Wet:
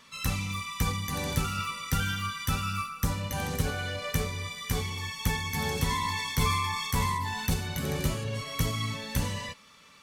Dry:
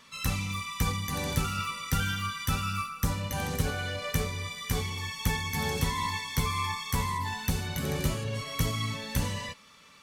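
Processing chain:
0:05.84–0:07.54: level that may fall only so fast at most 25 dB per second

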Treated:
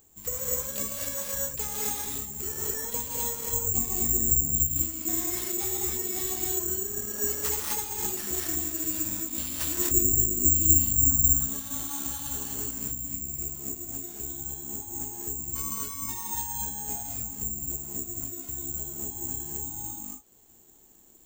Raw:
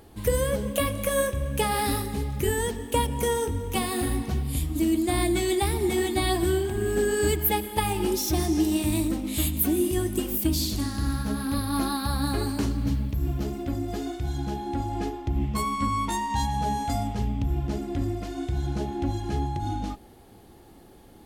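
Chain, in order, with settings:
0:09.78–0:11.24: RIAA equalisation playback
reverb reduction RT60 0.69 s
0:03.52–0:04.60: spectral tilt −3 dB per octave
reverb whose tail is shaped and stops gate 280 ms rising, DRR −3.5 dB
bad sample-rate conversion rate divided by 6×, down none, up zero stuff
level −17 dB

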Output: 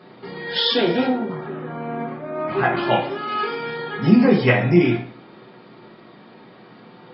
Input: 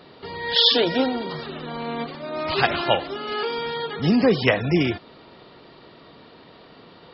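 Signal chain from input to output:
0:01.07–0:02.77: low-pass filter 1,700 Hz 12 dB per octave
convolution reverb RT60 0.50 s, pre-delay 3 ms, DRR −3 dB
level −9.5 dB

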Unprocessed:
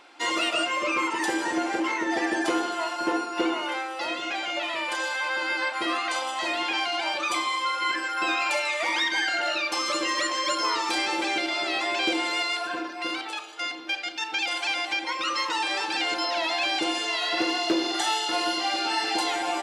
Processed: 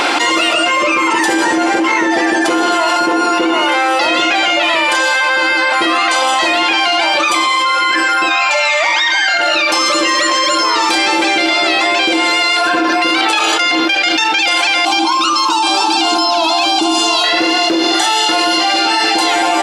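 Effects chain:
0:08.31–0:09.37: gain on a spectral selection 530–7,900 Hz +12 dB
0:14.85–0:17.24: phaser with its sweep stopped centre 510 Hz, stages 6
envelope flattener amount 100%
level −1.5 dB

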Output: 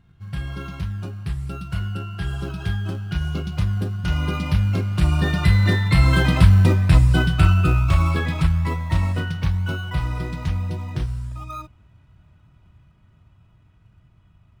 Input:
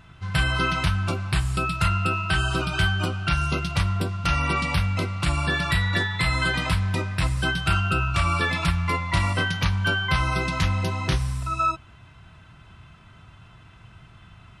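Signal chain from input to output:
source passing by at 0:06.53, 17 m/s, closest 17 metres
low-shelf EQ 480 Hz +10.5 dB
in parallel at −12 dB: sample-and-hold swept by an LFO 24×, swing 60% 1.1 Hz

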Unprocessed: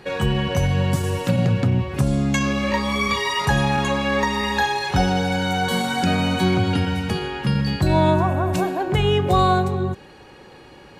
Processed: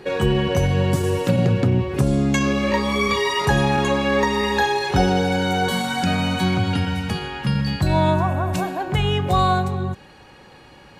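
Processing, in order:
parametric band 390 Hz +7.5 dB 0.75 octaves, from 0:05.70 −6 dB

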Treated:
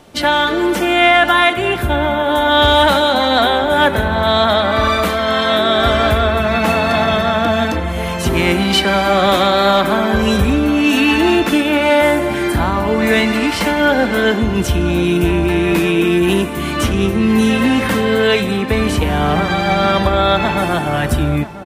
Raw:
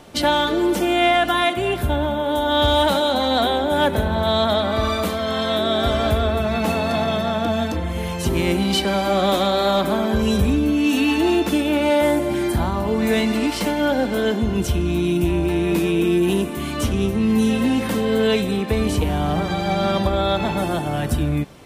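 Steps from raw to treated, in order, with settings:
dynamic equaliser 1,700 Hz, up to +8 dB, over −37 dBFS, Q 0.79
automatic gain control gain up to 5 dB
slap from a distant wall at 170 metres, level −14 dB

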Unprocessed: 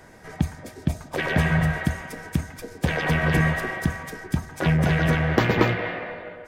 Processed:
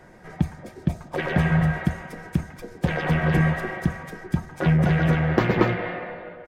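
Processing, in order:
high-shelf EQ 2,900 Hz −9.5 dB
comb filter 5.6 ms, depth 34%

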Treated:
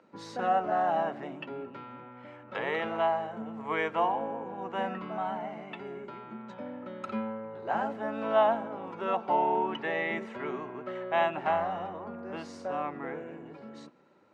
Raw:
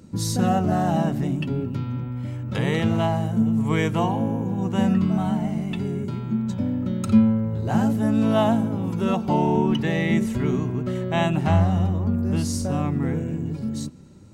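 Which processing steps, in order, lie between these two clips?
band-pass filter 210–3,800 Hz
three-way crossover with the lows and the highs turned down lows −20 dB, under 470 Hz, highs −13 dB, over 2,400 Hz

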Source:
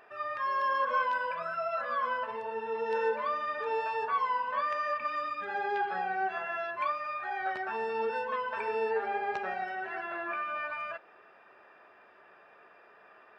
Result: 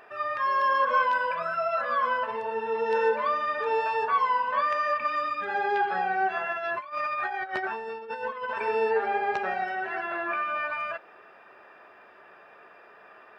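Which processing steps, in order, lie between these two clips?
0:06.51–0:08.61: compressor whose output falls as the input rises −37 dBFS, ratio −0.5
level +5.5 dB

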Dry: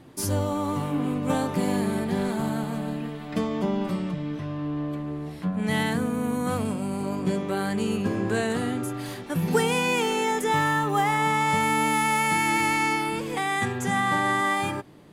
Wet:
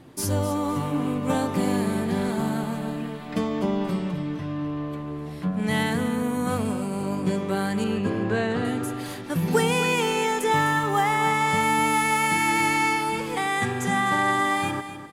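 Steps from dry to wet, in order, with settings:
0:07.84–0:08.65: low-pass filter 3,900 Hz 12 dB per octave
repeating echo 255 ms, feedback 28%, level −11.5 dB
level +1 dB

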